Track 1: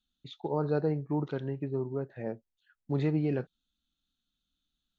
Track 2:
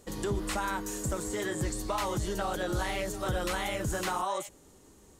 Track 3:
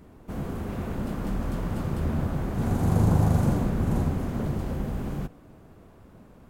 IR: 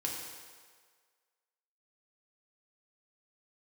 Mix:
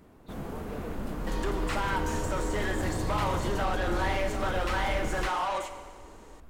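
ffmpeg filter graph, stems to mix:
-filter_complex "[0:a]volume=-12.5dB[a];[1:a]highshelf=f=3.4k:g=-8,asplit=2[b][c];[c]highpass=f=720:p=1,volume=20dB,asoftclip=type=tanh:threshold=-21.5dB[d];[b][d]amix=inputs=2:normalize=0,lowpass=f=2.8k:p=1,volume=-6dB,adelay=1200,volume=-5.5dB,asplit=2[e][f];[f]volume=-4dB[g];[2:a]asubboost=boost=8.5:cutoff=51,alimiter=limit=-17.5dB:level=0:latency=1,volume=-2dB[h];[3:a]atrim=start_sample=2205[i];[g][i]afir=irnorm=-1:irlink=0[j];[a][e][h][j]amix=inputs=4:normalize=0,lowshelf=f=240:g=-6"

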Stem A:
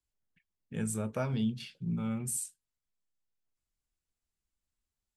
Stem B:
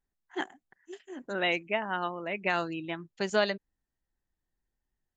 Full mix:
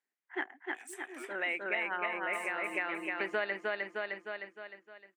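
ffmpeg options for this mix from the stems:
-filter_complex "[0:a]highpass=f=2k:t=q:w=2,asoftclip=type=hard:threshold=-37dB,volume=-7dB,asplit=3[a][b][c];[a]atrim=end=1.32,asetpts=PTS-STARTPTS,afade=t=out:st=1.316:d=0.004:c=hsin[d];[b]atrim=start=1.32:end=2.33,asetpts=PTS-STARTPTS,volume=0[e];[c]atrim=start=2.33,asetpts=PTS-STARTPTS,afade=t=in:d=0.004:c=hsin[f];[d][e][f]concat=n=3:v=0:a=1,asplit=3[g][h][i];[h]volume=-8.5dB[j];[1:a]dynaudnorm=f=170:g=5:m=5dB,lowpass=f=2.1k:t=q:w=3.1,volume=-4dB,asplit=2[k][l];[l]volume=-4.5dB[m];[i]apad=whole_len=227743[n];[k][n]sidechaincompress=threshold=-55dB:ratio=8:attack=16:release=1100[o];[j][m]amix=inputs=2:normalize=0,aecho=0:1:307|614|921|1228|1535|1842|2149:1|0.47|0.221|0.104|0.0488|0.0229|0.0108[p];[g][o][p]amix=inputs=3:normalize=0,highpass=f=260:w=0.5412,highpass=f=260:w=1.3066,acompressor=threshold=-33dB:ratio=3"

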